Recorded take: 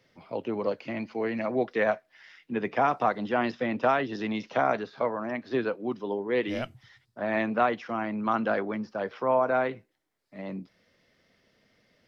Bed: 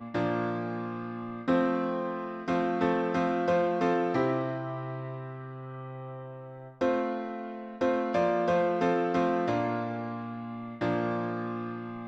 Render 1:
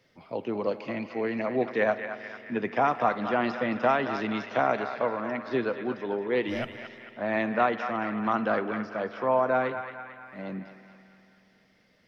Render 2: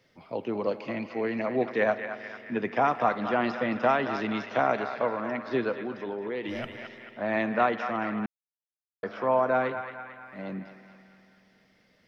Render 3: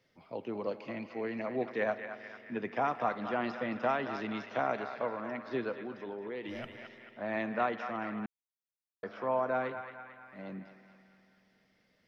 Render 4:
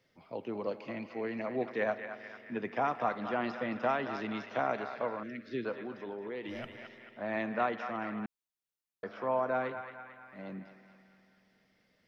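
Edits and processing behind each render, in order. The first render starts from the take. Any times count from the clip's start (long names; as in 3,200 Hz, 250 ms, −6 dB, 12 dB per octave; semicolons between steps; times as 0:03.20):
feedback echo with a band-pass in the loop 223 ms, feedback 63%, band-pass 1,800 Hz, level −7 dB; spring reverb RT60 3.3 s, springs 47 ms, chirp 45 ms, DRR 15 dB
0:05.82–0:06.64: downward compressor, threshold −29 dBFS; 0:08.26–0:09.03: silence
level −7 dB
0:05.23–0:05.65: Butterworth band-reject 890 Hz, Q 0.59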